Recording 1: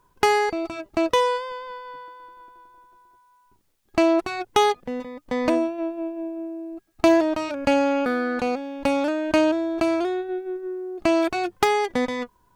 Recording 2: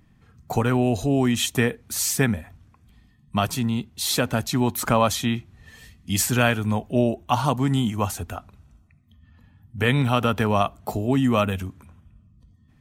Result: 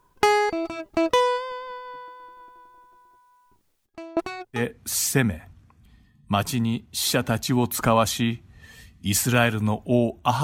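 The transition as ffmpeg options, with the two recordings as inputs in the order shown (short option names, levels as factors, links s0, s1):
-filter_complex "[0:a]asplit=3[s0][s1][s2];[s0]afade=t=out:st=3.85:d=0.02[s3];[s1]aeval=exprs='val(0)*pow(10,-25*if(lt(mod(1.2*n/s,1),2*abs(1.2)/1000),1-mod(1.2*n/s,1)/(2*abs(1.2)/1000),(mod(1.2*n/s,1)-2*abs(1.2)/1000)/(1-2*abs(1.2)/1000))/20)':c=same,afade=t=in:st=3.85:d=0.02,afade=t=out:st=4.65:d=0.02[s4];[s2]afade=t=in:st=4.65:d=0.02[s5];[s3][s4][s5]amix=inputs=3:normalize=0,apad=whole_dur=10.43,atrim=end=10.43,atrim=end=4.65,asetpts=PTS-STARTPTS[s6];[1:a]atrim=start=1.57:end=7.47,asetpts=PTS-STARTPTS[s7];[s6][s7]acrossfade=d=0.12:c1=tri:c2=tri"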